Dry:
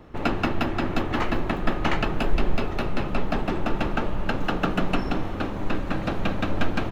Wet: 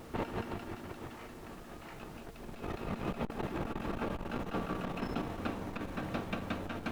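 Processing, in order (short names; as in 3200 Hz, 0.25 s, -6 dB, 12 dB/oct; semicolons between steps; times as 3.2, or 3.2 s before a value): Doppler pass-by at 1.66, 9 m/s, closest 5.5 m; HPF 68 Hz 6 dB/oct; limiter -23 dBFS, peak gain reduction 10 dB; negative-ratio compressor -40 dBFS, ratio -0.5; resonator 230 Hz, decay 0.25 s, harmonics all, mix 60%; added noise pink -68 dBFS; vibrato 0.48 Hz 6.6 cents; core saturation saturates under 170 Hz; gain +10 dB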